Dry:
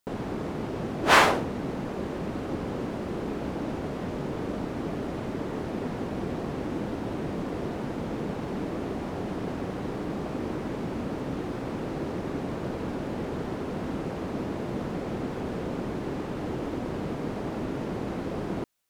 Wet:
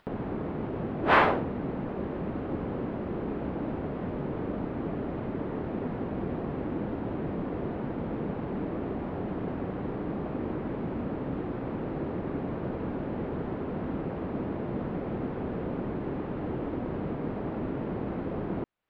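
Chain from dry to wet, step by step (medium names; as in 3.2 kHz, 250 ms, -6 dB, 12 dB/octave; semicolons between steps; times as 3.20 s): upward compressor, threshold -34 dBFS; distance through air 470 m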